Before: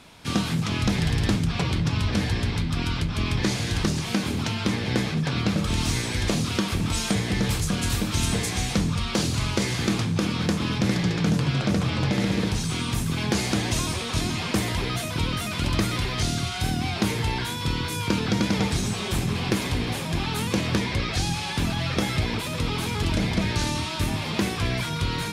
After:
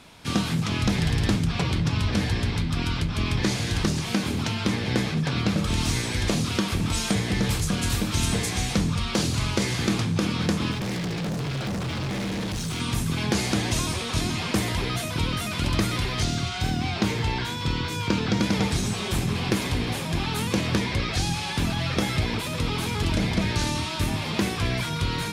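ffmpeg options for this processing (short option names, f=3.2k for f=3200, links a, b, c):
-filter_complex "[0:a]asettb=1/sr,asplit=3[a][b][c];[a]atrim=end=10.714[d];[b]atrim=start=10.71:end=12.8,asetpts=PTS-STARTPTS,afade=t=in:d=0.004:c=qsin,afade=t=out:st=2.086:d=0.004:c=qsin,asoftclip=type=hard:threshold=-26.5dB[e];[c]atrim=start=12.796[f];[d][e]acrossfade=d=0.004:c1=hsin:c2=qsin[g];[g][f]acrossfade=d=0.004:c1=qsin:c2=hsin,asettb=1/sr,asplit=3[h][i][j];[h]atrim=end=16.244[k];[i]atrim=start=16.24:end=18.4,asetpts=PTS-STARTPTS,afade=t=in:d=0.004:c=qsin,afade=t=out:st=2.156:d=0.004:c=qsin,equalizer=f=11k:t=o:w=0.58:g=-11.5[l];[j]atrim=start=18.396[m];[k][l]acrossfade=d=0.004:c1=hsin:c2=qsin[n];[n][m]acrossfade=d=0.004:c1=qsin:c2=hsin"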